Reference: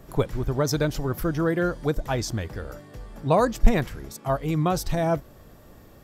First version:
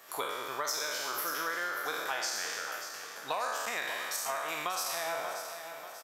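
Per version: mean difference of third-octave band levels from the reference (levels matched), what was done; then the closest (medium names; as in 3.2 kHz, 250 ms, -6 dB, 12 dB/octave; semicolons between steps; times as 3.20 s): 16.5 dB: spectral sustain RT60 1.15 s; high-pass 1.2 kHz 12 dB/octave; compression, threshold -35 dBFS, peak gain reduction 12.5 dB; feedback delay 587 ms, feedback 45%, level -10 dB; trim +3.5 dB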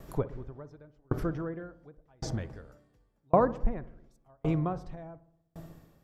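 12.0 dB: low-pass that closes with the level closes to 1.7 kHz, closed at -18 dBFS; dynamic bell 3.8 kHz, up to -6 dB, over -49 dBFS, Q 0.75; on a send: filtered feedback delay 61 ms, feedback 83%, low-pass 1.4 kHz, level -13.5 dB; on the sum: sawtooth tremolo in dB decaying 0.9 Hz, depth 40 dB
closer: second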